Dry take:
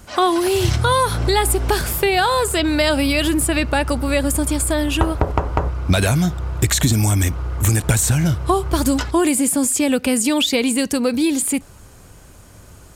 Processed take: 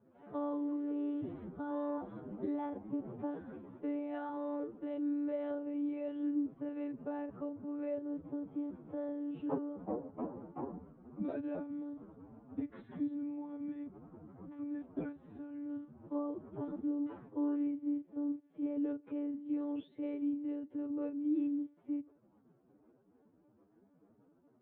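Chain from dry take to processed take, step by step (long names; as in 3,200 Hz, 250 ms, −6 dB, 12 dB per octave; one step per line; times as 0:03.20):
one-pitch LPC vocoder at 8 kHz 290 Hz
four-pole ladder band-pass 340 Hz, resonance 25%
phase-vocoder stretch with locked phases 1.9×
level −5.5 dB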